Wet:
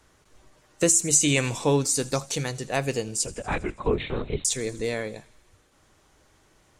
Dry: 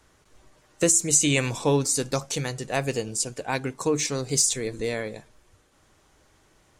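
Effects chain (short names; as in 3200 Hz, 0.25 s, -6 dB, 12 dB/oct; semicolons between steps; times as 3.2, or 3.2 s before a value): 3.26–4.45 LPC vocoder at 8 kHz whisper; thin delay 81 ms, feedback 68%, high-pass 2900 Hz, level -19 dB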